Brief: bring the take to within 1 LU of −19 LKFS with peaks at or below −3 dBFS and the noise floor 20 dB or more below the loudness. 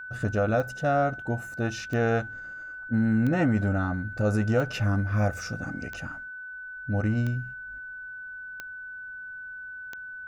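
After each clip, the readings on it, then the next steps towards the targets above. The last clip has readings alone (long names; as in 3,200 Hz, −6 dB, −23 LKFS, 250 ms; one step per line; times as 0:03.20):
number of clicks 8; interfering tone 1,500 Hz; level of the tone −37 dBFS; integrated loudness −29.0 LKFS; sample peak −13.0 dBFS; target loudness −19.0 LKFS
→ click removal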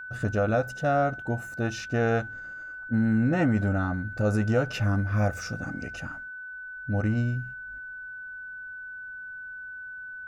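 number of clicks 0; interfering tone 1,500 Hz; level of the tone −37 dBFS
→ notch filter 1,500 Hz, Q 30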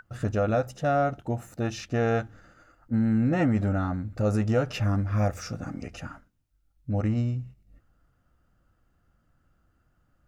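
interfering tone none found; integrated loudness −27.5 LKFS; sample peak −13.5 dBFS; target loudness −19.0 LKFS
→ level +8.5 dB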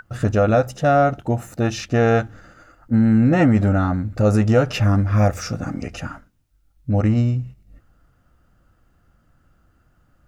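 integrated loudness −19.0 LKFS; sample peak −5.0 dBFS; background noise floor −61 dBFS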